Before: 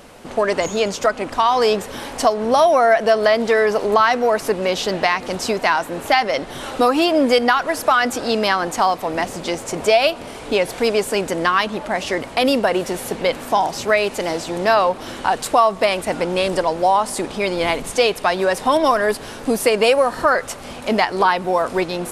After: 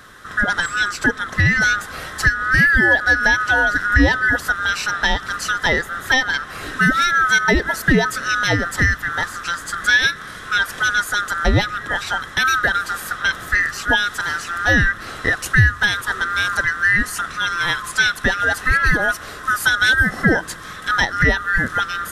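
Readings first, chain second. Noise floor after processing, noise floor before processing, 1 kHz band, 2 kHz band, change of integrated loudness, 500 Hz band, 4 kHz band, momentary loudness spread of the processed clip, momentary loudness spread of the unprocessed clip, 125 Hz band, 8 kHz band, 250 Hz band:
−35 dBFS, −34 dBFS, −4.5 dB, +9.5 dB, +1.0 dB, −11.5 dB, +1.0 dB, 8 LU, 8 LU, +11.0 dB, +1.0 dB, −1.5 dB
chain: neighbouring bands swapped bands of 1,000 Hz
low-shelf EQ 320 Hz +5 dB
level −1 dB

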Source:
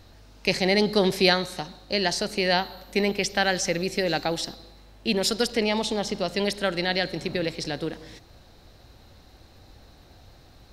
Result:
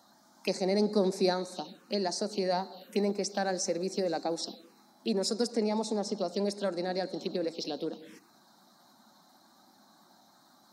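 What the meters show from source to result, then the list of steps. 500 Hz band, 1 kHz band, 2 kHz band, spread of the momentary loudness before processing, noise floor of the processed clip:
−4.5 dB, −6.5 dB, −16.0 dB, 10 LU, −62 dBFS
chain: spectral magnitudes quantised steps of 15 dB
dynamic equaliser 1,500 Hz, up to −3 dB, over −34 dBFS, Q 0.9
phaser swept by the level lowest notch 400 Hz, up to 3,100 Hz, full sweep at −24.5 dBFS
in parallel at 0 dB: downward compressor, threshold −36 dBFS, peak gain reduction 17.5 dB
on the sum: Chebyshev high-pass filter 200 Hz, order 4
parametric band 1,900 Hz −6 dB 0.58 octaves
level −5 dB

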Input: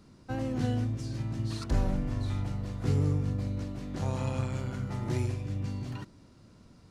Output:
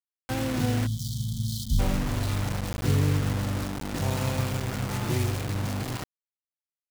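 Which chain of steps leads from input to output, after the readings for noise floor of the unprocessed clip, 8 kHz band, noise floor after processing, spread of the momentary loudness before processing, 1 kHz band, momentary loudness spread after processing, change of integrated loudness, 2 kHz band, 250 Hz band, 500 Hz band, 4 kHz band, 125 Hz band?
−57 dBFS, +13.0 dB, below −85 dBFS, 7 LU, +7.0 dB, 6 LU, +4.0 dB, +10.0 dB, +3.5 dB, +4.5 dB, +11.5 dB, +3.5 dB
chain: bit-depth reduction 6 bits, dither none
gain on a spectral selection 0:00.86–0:01.79, 240–3,000 Hz −30 dB
level +3.5 dB

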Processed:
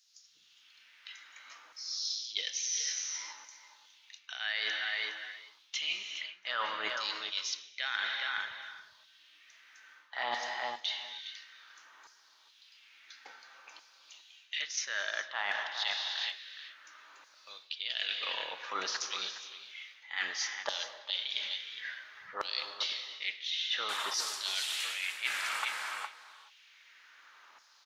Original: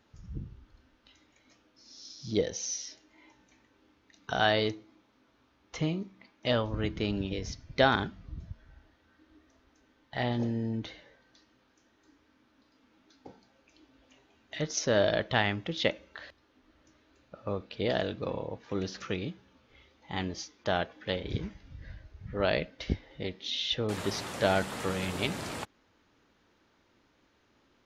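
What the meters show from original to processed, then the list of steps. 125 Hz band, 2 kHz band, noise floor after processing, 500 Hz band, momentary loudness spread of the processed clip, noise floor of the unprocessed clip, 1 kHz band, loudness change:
below −35 dB, +1.0 dB, −63 dBFS, −17.0 dB, 20 LU, −69 dBFS, −4.5 dB, −3.0 dB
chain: auto-filter high-pass saw down 0.58 Hz 980–5,600 Hz
automatic gain control gain up to 3.5 dB
slap from a distant wall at 71 metres, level −12 dB
reverb whose tail is shaped and stops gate 460 ms flat, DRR 10 dB
reversed playback
downward compressor 12 to 1, threshold −37 dBFS, peak gain reduction 21.5 dB
reversed playback
level +6 dB

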